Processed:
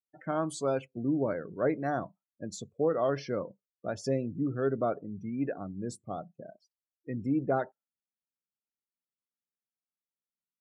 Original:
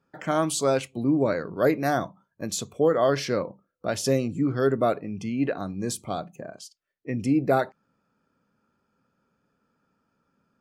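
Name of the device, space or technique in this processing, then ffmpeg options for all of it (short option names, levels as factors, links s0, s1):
behind a face mask: -af "afftdn=nr=32:nf=-34,highshelf=f=2800:g=-6,volume=0.473"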